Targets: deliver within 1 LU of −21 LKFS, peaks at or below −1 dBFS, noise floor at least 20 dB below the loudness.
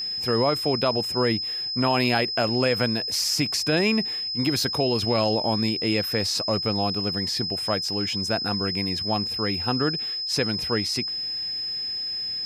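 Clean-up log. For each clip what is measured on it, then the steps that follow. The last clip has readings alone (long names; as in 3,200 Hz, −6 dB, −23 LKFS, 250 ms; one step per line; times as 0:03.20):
interfering tone 5,100 Hz; level of the tone −27 dBFS; integrated loudness −23.5 LKFS; sample peak −6.5 dBFS; target loudness −21.0 LKFS
→ notch filter 5,100 Hz, Q 30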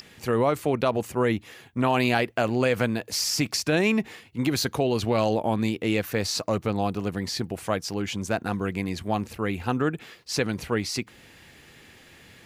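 interfering tone none found; integrated loudness −26.0 LKFS; sample peak −7.5 dBFS; target loudness −21.0 LKFS
→ level +5 dB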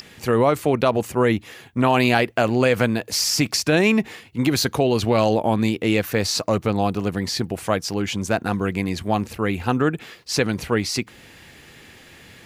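integrated loudness −21.0 LKFS; sample peak −2.5 dBFS; background noise floor −47 dBFS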